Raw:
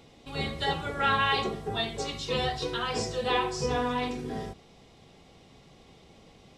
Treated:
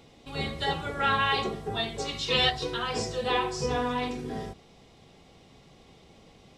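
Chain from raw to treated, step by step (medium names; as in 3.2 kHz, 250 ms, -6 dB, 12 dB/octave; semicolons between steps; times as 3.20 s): 2.04–2.49 s: peaking EQ 3 kHz +0.5 dB -> +12.5 dB 2.1 oct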